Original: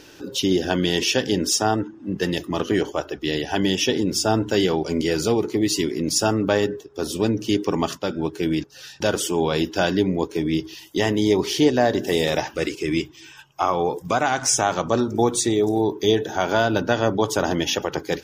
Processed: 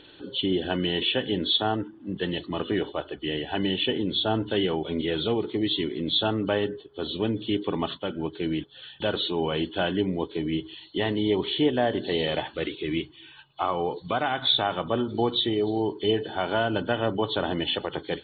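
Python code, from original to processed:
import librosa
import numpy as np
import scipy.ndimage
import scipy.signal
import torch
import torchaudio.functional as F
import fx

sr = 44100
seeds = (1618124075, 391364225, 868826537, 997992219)

y = fx.freq_compress(x, sr, knee_hz=2900.0, ratio=4.0)
y = F.gain(torch.from_numpy(y), -5.5).numpy()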